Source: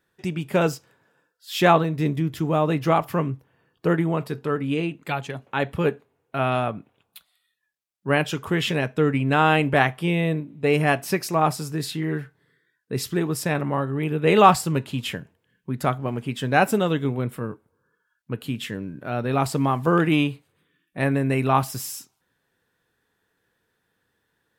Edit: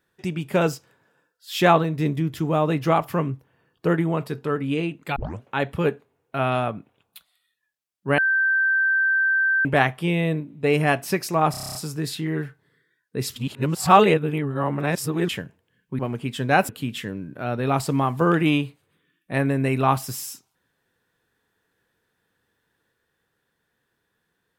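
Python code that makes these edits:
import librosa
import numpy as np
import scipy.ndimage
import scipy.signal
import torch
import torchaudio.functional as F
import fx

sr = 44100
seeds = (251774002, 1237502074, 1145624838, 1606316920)

y = fx.edit(x, sr, fx.tape_start(start_s=5.16, length_s=0.26),
    fx.bleep(start_s=8.18, length_s=1.47, hz=1560.0, db=-17.0),
    fx.stutter(start_s=11.51, slice_s=0.03, count=9),
    fx.reverse_span(start_s=13.12, length_s=1.93),
    fx.cut(start_s=15.75, length_s=0.27),
    fx.cut(start_s=16.72, length_s=1.63), tone=tone)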